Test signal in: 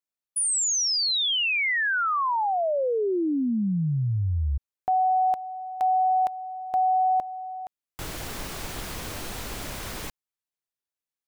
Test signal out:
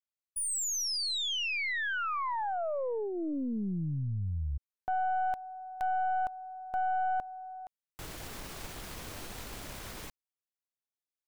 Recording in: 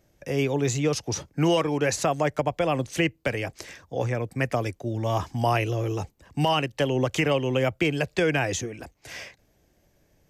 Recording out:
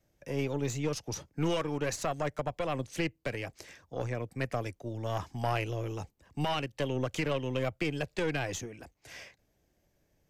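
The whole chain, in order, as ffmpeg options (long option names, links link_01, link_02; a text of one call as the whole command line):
ffmpeg -i in.wav -af "adynamicequalizer=threshold=0.00794:dfrequency=380:dqfactor=7.2:tfrequency=380:tqfactor=7.2:attack=5:release=100:ratio=0.375:range=2.5:mode=cutabove:tftype=bell,aeval=exprs='(tanh(6.31*val(0)+0.65)-tanh(0.65))/6.31':channel_layout=same,volume=-5dB" out.wav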